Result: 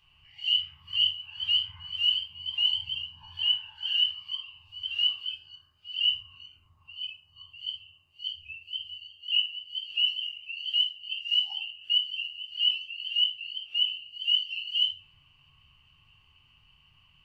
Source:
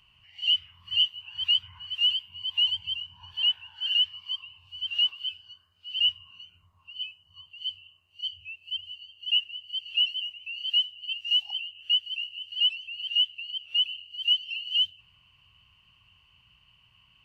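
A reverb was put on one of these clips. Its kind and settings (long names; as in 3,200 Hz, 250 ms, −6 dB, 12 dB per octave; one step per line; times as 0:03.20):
rectangular room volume 290 cubic metres, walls furnished, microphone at 3.8 metres
level −7 dB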